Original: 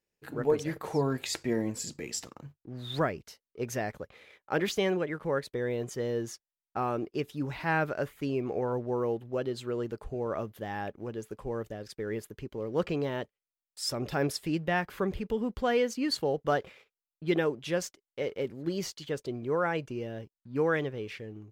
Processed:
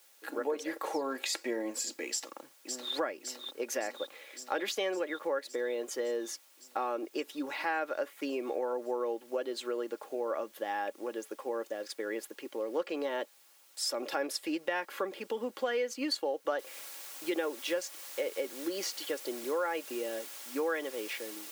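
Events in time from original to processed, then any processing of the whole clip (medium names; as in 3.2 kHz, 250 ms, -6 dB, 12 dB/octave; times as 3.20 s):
2.09–2.94 s: echo throw 560 ms, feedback 75%, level -7 dB
16.59 s: noise floor step -66 dB -50 dB
whole clip: high-pass 350 Hz 24 dB/octave; comb 3.6 ms, depth 47%; compression 3:1, threshold -35 dBFS; trim +3.5 dB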